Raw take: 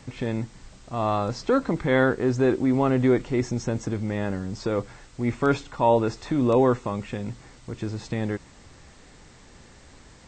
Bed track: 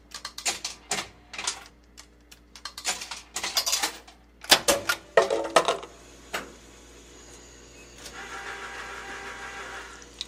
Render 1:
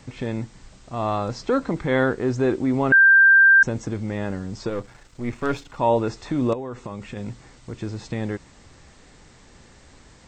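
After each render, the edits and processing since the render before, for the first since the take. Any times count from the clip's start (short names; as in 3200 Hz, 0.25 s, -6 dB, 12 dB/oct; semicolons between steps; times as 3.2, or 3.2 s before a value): 2.92–3.63 bleep 1580 Hz -9.5 dBFS; 4.69–5.77 half-wave gain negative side -7 dB; 6.53–7.17 compressor 16:1, threshold -27 dBFS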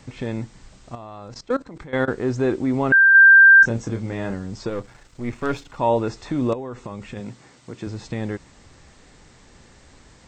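0.95–2.08 level quantiser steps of 19 dB; 3.12–4.34 doubler 26 ms -6 dB; 7.2–7.87 HPF 140 Hz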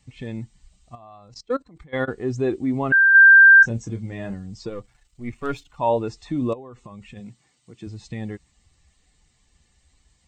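per-bin expansion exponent 1.5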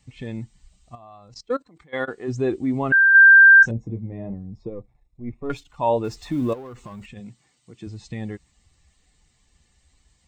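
1.53–2.27 HPF 210 Hz -> 530 Hz 6 dB/oct; 3.71–5.5 running mean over 29 samples; 6.04–7.06 G.711 law mismatch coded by mu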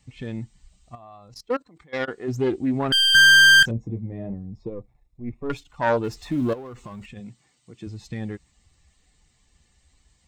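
self-modulated delay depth 0.31 ms; slew limiter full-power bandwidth 610 Hz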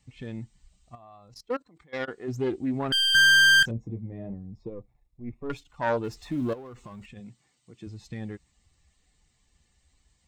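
gain -5 dB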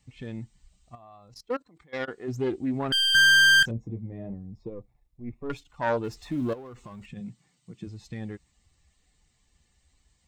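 7.06–7.85 bell 170 Hz +13 dB 0.54 oct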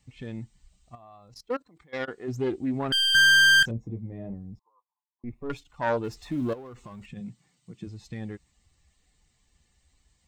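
4.59–5.24 Butterworth band-pass 1000 Hz, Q 5.7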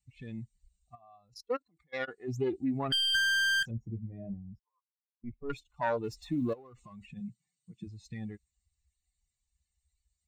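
per-bin expansion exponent 1.5; compressor 6:1, threshold -26 dBFS, peak gain reduction 10 dB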